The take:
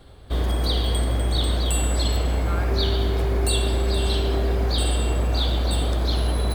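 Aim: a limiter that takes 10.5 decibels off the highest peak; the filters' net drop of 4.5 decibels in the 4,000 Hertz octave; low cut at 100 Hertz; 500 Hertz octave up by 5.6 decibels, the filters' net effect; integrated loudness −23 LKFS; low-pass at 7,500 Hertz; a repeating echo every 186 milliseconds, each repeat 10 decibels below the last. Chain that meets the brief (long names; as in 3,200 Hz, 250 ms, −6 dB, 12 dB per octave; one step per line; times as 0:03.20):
high-pass filter 100 Hz
low-pass filter 7,500 Hz
parametric band 500 Hz +7.5 dB
parametric band 4,000 Hz −5 dB
brickwall limiter −21.5 dBFS
repeating echo 186 ms, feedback 32%, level −10 dB
level +6.5 dB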